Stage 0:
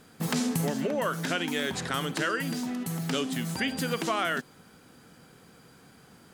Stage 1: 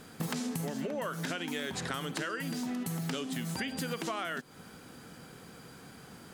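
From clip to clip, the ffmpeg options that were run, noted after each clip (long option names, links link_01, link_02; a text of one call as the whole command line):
ffmpeg -i in.wav -af "acompressor=threshold=-37dB:ratio=6,volume=4dB" out.wav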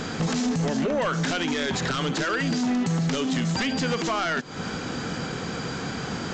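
ffmpeg -i in.wav -af "aresample=16000,aeval=exprs='0.106*sin(PI/2*3.16*val(0)/0.106)':channel_layout=same,aresample=44100,alimiter=level_in=2dB:limit=-24dB:level=0:latency=1:release=253,volume=-2dB,volume=6dB" out.wav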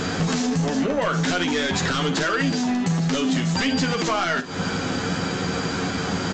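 ffmpeg -i in.wav -filter_complex "[0:a]acompressor=threshold=-26dB:ratio=6,asplit=2[link_01][link_02];[link_02]aecho=0:1:11|51:0.596|0.237[link_03];[link_01][link_03]amix=inputs=2:normalize=0,volume=5dB" out.wav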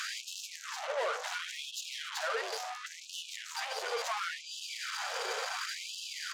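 ffmpeg -i in.wav -filter_complex "[0:a]acrossover=split=120|950[link_01][link_02][link_03];[link_03]alimiter=limit=-23.5dB:level=0:latency=1:release=59[link_04];[link_01][link_02][link_04]amix=inputs=3:normalize=0,asoftclip=type=tanh:threshold=-29.5dB,afftfilt=real='re*gte(b*sr/1024,380*pow(2600/380,0.5+0.5*sin(2*PI*0.71*pts/sr)))':imag='im*gte(b*sr/1024,380*pow(2600/380,0.5+0.5*sin(2*PI*0.71*pts/sr)))':win_size=1024:overlap=0.75" out.wav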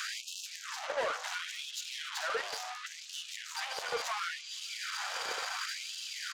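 ffmpeg -i in.wav -filter_complex "[0:a]acrossover=split=590|2300|6700[link_01][link_02][link_03][link_04];[link_01]acrusher=bits=5:mix=0:aa=0.5[link_05];[link_03]aecho=1:1:455|910|1365|1820|2275:0.355|0.17|0.0817|0.0392|0.0188[link_06];[link_05][link_02][link_06][link_04]amix=inputs=4:normalize=0" out.wav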